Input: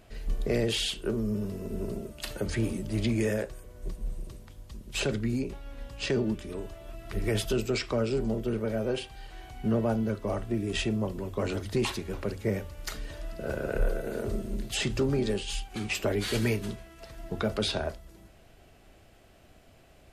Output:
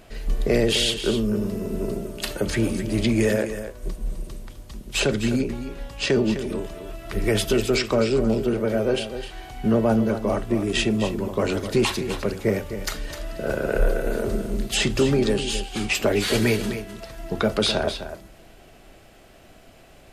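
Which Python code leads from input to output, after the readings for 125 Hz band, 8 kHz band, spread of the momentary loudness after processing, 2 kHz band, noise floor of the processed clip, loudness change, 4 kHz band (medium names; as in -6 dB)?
+4.5 dB, +8.5 dB, 13 LU, +8.5 dB, -49 dBFS, +7.5 dB, +8.5 dB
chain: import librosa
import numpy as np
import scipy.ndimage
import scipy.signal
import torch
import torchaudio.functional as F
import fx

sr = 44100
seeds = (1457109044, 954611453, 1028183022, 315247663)

p1 = fx.peak_eq(x, sr, hz=79.0, db=-6.5, octaves=1.4)
p2 = p1 + fx.echo_single(p1, sr, ms=256, db=-10.5, dry=0)
y = p2 * librosa.db_to_amplitude(8.0)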